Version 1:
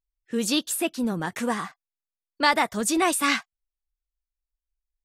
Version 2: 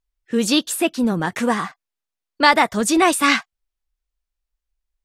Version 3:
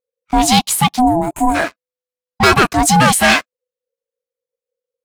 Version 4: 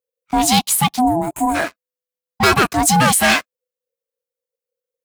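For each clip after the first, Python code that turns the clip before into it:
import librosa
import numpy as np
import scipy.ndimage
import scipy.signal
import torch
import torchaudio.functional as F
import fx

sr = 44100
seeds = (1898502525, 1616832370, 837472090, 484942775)

y1 = fx.high_shelf(x, sr, hz=7800.0, db=-7.0)
y1 = y1 * librosa.db_to_amplitude(7.0)
y2 = fx.leveller(y1, sr, passes=3)
y2 = fx.spec_box(y2, sr, start_s=1.0, length_s=0.55, low_hz=530.0, high_hz=6900.0, gain_db=-19)
y2 = y2 * np.sin(2.0 * np.pi * 500.0 * np.arange(len(y2)) / sr)
y3 = scipy.signal.sosfilt(scipy.signal.butter(2, 51.0, 'highpass', fs=sr, output='sos'), y2)
y3 = fx.high_shelf(y3, sr, hz=11000.0, db=9.0)
y3 = y3 * librosa.db_to_amplitude(-3.0)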